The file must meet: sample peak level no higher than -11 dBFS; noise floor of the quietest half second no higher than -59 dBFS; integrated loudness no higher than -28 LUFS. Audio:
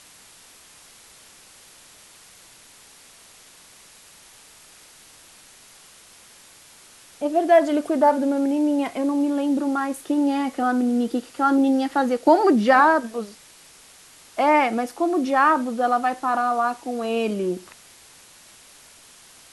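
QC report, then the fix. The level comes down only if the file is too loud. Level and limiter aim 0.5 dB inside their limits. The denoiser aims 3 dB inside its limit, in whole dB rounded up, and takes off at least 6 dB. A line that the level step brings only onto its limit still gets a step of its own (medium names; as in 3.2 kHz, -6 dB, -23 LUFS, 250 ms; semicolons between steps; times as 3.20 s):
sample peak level -4.0 dBFS: fail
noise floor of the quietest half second -49 dBFS: fail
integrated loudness -21.0 LUFS: fail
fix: noise reduction 6 dB, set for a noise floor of -49 dBFS; trim -7.5 dB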